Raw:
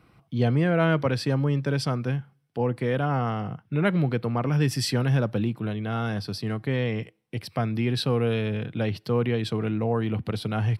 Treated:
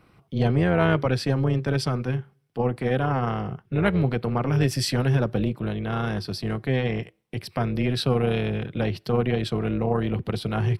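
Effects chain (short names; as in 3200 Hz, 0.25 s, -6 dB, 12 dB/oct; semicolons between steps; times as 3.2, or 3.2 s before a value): AM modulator 260 Hz, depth 45%; gain +4 dB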